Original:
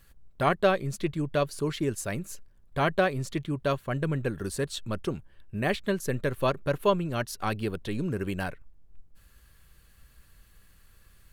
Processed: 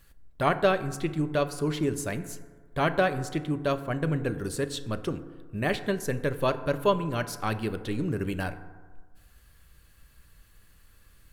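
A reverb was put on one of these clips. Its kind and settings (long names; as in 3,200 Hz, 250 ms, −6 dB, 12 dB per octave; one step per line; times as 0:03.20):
feedback delay network reverb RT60 1.5 s, low-frequency decay 0.9×, high-frequency decay 0.35×, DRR 10 dB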